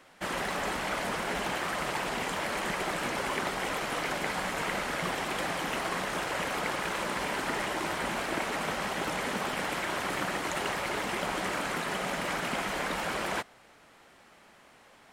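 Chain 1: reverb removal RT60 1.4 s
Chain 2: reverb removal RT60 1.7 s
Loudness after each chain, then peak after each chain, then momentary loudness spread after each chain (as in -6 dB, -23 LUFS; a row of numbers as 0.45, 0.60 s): -34.5, -35.0 LUFS; -18.0, -18.0 dBFS; 1, 1 LU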